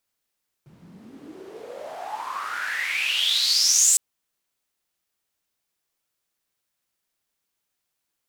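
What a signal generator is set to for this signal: swept filtered noise white, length 3.31 s bandpass, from 140 Hz, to 7.9 kHz, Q 9.3, exponential, gain ramp +15 dB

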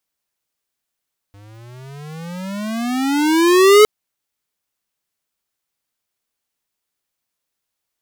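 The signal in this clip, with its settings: gliding synth tone square, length 2.51 s, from 99 Hz, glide +25.5 st, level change +36 dB, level -7 dB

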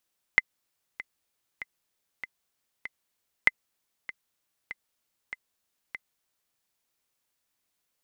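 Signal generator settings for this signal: metronome 97 bpm, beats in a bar 5, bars 2, 2.05 kHz, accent 18 dB -4.5 dBFS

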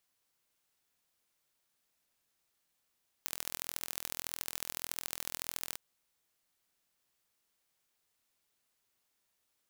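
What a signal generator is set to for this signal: pulse train 41.7 per s, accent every 3, -8 dBFS 2.50 s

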